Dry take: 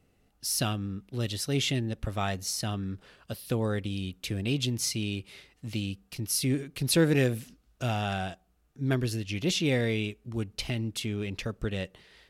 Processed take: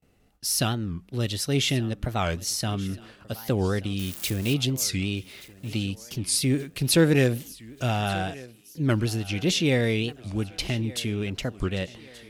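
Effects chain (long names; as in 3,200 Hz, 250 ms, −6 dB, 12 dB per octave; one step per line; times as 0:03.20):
0:03.99–0:04.54: spike at every zero crossing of −28 dBFS
noise gate with hold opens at −58 dBFS
feedback echo with a high-pass in the loop 1,179 ms, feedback 51%, high-pass 180 Hz, level −19 dB
wow of a warped record 45 rpm, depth 250 cents
level +4 dB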